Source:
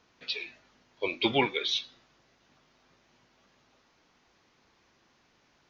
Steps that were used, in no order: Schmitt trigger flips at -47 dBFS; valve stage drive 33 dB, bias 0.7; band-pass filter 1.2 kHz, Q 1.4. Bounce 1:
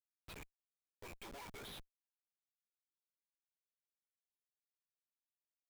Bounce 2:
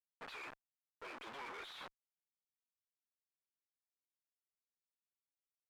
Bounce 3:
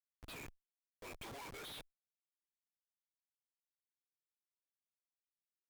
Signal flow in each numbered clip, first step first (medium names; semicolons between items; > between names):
band-pass filter > valve stage > Schmitt trigger; Schmitt trigger > band-pass filter > valve stage; band-pass filter > Schmitt trigger > valve stage